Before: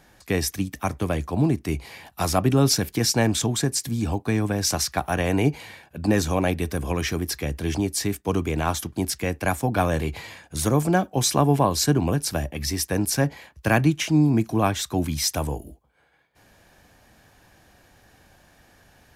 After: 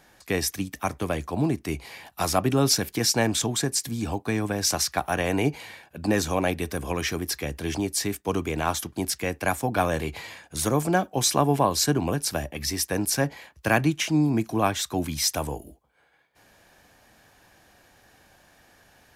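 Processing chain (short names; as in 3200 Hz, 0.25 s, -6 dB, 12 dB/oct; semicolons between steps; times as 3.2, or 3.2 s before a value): low shelf 230 Hz -7 dB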